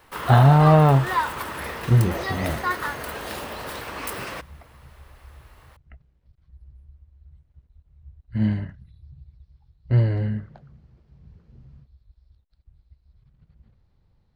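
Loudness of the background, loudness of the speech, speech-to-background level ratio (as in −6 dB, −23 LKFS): −29.5 LKFS, −20.0 LKFS, 9.5 dB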